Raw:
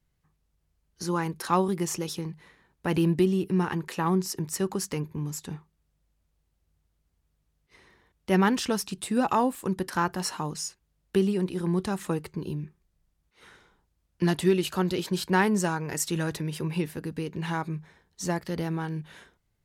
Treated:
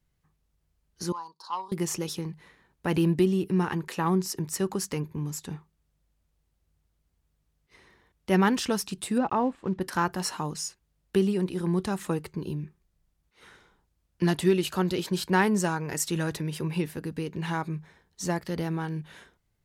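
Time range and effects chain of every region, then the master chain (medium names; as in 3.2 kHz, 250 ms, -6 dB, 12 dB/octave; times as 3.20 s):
1.12–1.72 s: two resonant band-passes 2.1 kHz, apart 2.2 oct + transformer saturation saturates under 980 Hz
9.18–9.81 s: block-companded coder 5-bit + tape spacing loss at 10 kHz 30 dB
whole clip: none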